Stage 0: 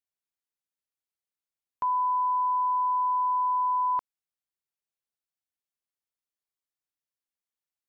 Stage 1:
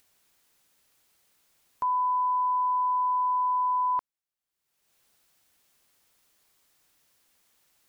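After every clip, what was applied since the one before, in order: upward compressor, threshold -48 dBFS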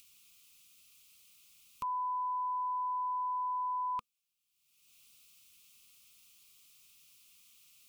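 FFT filter 220 Hz 0 dB, 330 Hz -11 dB, 490 Hz -6 dB, 740 Hz -24 dB, 1.2 kHz 0 dB, 1.7 kHz -16 dB, 2.5 kHz +10 dB, 4.1 kHz +6 dB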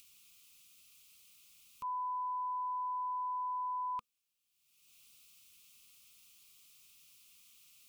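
peak limiter -34 dBFS, peak gain reduction 7.5 dB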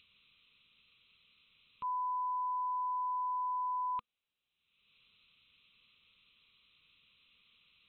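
brick-wall FIR low-pass 4.1 kHz; trim +2 dB

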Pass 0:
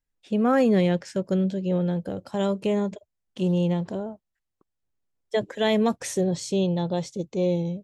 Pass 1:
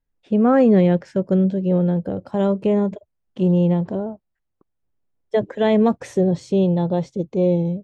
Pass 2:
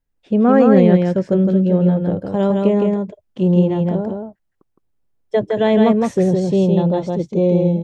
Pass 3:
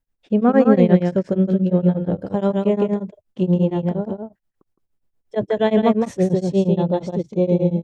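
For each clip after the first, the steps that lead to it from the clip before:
low-pass 1 kHz 6 dB/octave; trim +6.5 dB
delay 163 ms -3.5 dB; trim +2 dB
tremolo of two beating tones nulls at 8.5 Hz

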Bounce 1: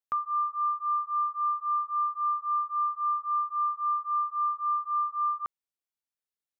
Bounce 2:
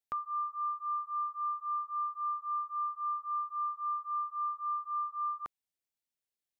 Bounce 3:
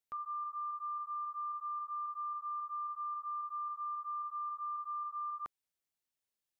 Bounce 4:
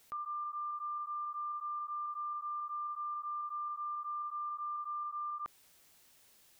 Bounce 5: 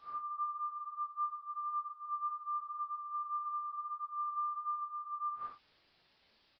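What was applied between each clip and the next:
peaking EQ 1.2 kHz -6.5 dB
in parallel at 0 dB: level held to a coarse grid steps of 17 dB; on the sum: peak limiter -33.5 dBFS, peak gain reduction 9.5 dB; trim -2 dB
level flattener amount 50%
phase randomisation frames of 200 ms; resampled via 11.025 kHz

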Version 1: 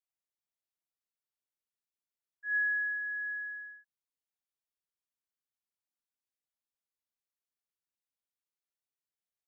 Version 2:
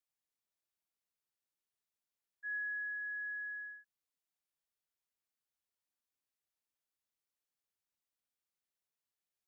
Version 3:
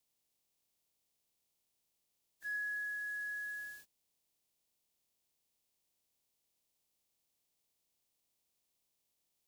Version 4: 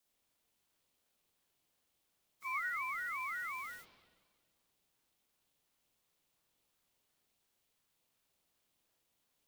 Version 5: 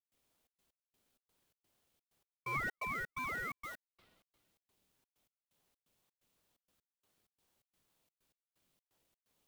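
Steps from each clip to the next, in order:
compression 3:1, threshold -41 dBFS, peak gain reduction 10 dB
spectral peaks clipped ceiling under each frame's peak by 26 dB; peaking EQ 1.5 kHz -11.5 dB 1 oct; trim +11 dB
spring tank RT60 1.5 s, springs 45 ms, chirp 20 ms, DRR -5 dB; ring modulator with a swept carrier 430 Hz, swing 55%, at 2.8 Hz; trim +3.5 dB
trance gate ".xxx.x..xx.xx" 128 bpm -60 dB; in parallel at -8 dB: decimation with a swept rate 33×, swing 100% 2.1 Hz

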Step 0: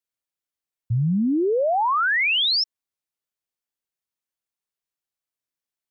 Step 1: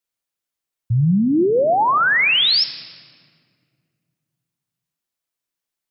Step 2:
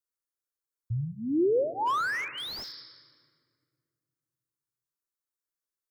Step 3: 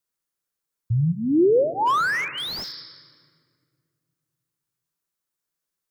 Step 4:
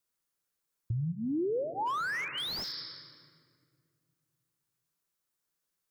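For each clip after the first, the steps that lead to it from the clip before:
on a send at -15 dB: treble shelf 3 kHz +9 dB + reverberation RT60 2.1 s, pre-delay 6 ms; on the sum: trim +4.5 dB
static phaser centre 720 Hz, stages 6; slew-rate limiter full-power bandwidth 130 Hz; trim -7 dB
peaking EQ 170 Hz +9.5 dB 0.41 oct; trim +7 dB
compression 3:1, threshold -35 dBFS, peak gain reduction 14.5 dB

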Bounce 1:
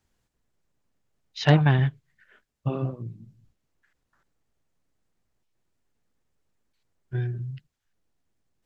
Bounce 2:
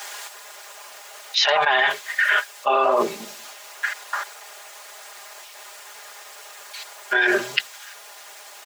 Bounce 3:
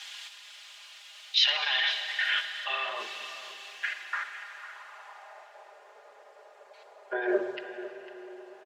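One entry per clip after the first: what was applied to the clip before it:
high-pass 650 Hz 24 dB/octave; comb 4.9 ms, depth 82%; level flattener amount 100%; trim +2.5 dB
band-pass sweep 3.2 kHz -> 510 Hz, 3.64–5.77 s; delay 502 ms -14 dB; reverberation RT60 4.3 s, pre-delay 41 ms, DRR 8 dB

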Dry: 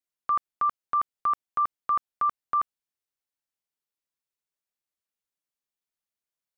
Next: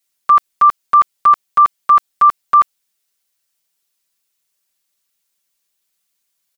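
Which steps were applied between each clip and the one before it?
treble shelf 2.1 kHz +11 dB; comb 5.2 ms, depth 96%; trim +7.5 dB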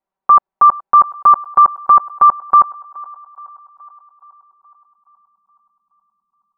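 low-pass sweep 870 Hz -> 220 Hz, 3.92–5.10 s; band-passed feedback delay 422 ms, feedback 61%, band-pass 1 kHz, level -21 dB; trim +1.5 dB

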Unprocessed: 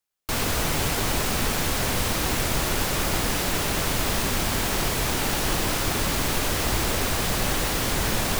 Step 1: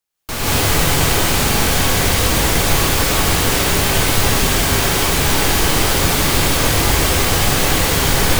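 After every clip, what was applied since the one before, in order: gated-style reverb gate 230 ms rising, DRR -7 dB; trim +1.5 dB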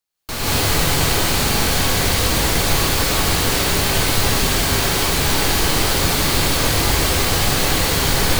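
peaking EQ 4.3 kHz +4.5 dB 0.3 oct; trim -2.5 dB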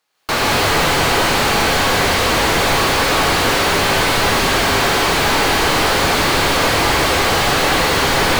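overdrive pedal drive 29 dB, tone 1.5 kHz, clips at -3 dBFS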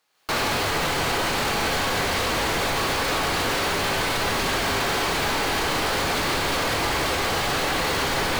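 peak limiter -16.5 dBFS, peak gain reduction 11 dB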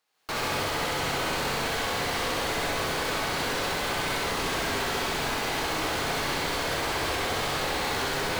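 flutter echo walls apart 11.1 m, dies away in 0.93 s; trim -7 dB

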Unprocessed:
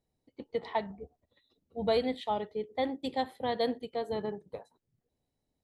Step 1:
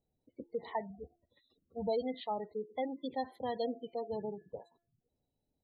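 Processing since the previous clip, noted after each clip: de-hum 342.6 Hz, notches 7; spectral gate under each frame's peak -20 dB strong; in parallel at -1 dB: compression, threshold -38 dBFS, peak gain reduction 13.5 dB; on the sum: trim -7 dB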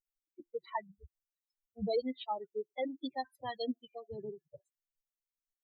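expander on every frequency bin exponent 3; dynamic bell 680 Hz, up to -6 dB, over -53 dBFS, Q 2.2; trim +7 dB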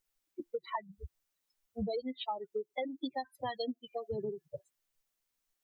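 compression 10:1, threshold -44 dBFS, peak gain reduction 16.5 dB; trim +10.5 dB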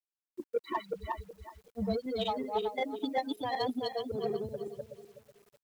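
backward echo that repeats 187 ms, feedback 51%, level -0.5 dB; Chebyshev shaper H 7 -31 dB, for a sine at -21 dBFS; bit crusher 11-bit; trim +2 dB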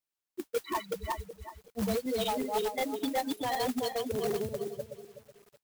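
modulation noise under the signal 18 dB; in parallel at -6.5 dB: integer overflow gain 27.5 dB

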